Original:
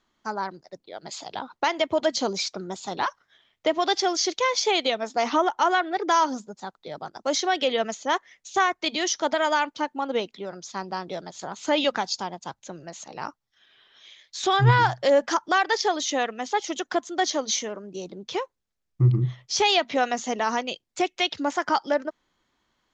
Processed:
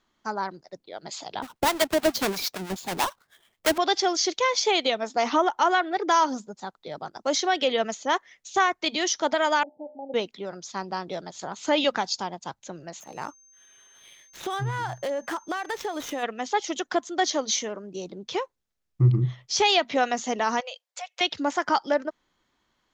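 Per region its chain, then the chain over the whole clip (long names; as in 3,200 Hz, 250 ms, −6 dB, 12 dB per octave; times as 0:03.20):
0:01.42–0:03.78: each half-wave held at its own peak + two-band tremolo in antiphase 9.1 Hz, crossover 720 Hz
0:09.63–0:10.14: Chebyshev low-pass with heavy ripple 810 Hz, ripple 6 dB + low-shelf EQ 350 Hz −10.5 dB + hum removal 66.85 Hz, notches 35
0:12.99–0:16.22: running median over 9 samples + downward compressor, threshold −26 dBFS + steady tone 6,300 Hz −54 dBFS
0:20.60–0:21.21: downward compressor 3 to 1, threshold −32 dBFS + linear-phase brick-wall high-pass 460 Hz + one half of a high-frequency compander decoder only
whole clip: no processing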